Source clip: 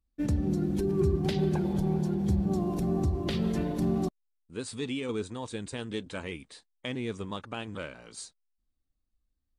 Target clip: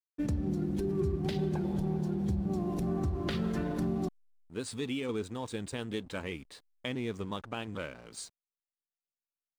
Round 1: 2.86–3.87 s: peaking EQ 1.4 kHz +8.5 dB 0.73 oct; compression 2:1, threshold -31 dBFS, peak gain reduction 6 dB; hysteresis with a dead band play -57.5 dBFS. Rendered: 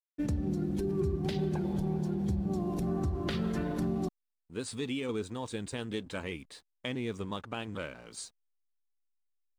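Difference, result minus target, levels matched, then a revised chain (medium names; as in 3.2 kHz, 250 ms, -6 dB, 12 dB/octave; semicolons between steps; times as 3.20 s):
hysteresis with a dead band: distortion -8 dB
2.86–3.87 s: peaking EQ 1.4 kHz +8.5 dB 0.73 oct; compression 2:1, threshold -31 dBFS, peak gain reduction 6 dB; hysteresis with a dead band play -49.5 dBFS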